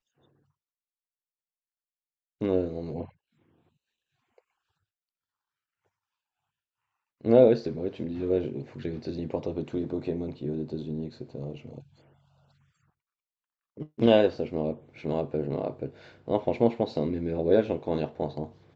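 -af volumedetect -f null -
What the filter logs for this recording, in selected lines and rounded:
mean_volume: -30.2 dB
max_volume: -6.6 dB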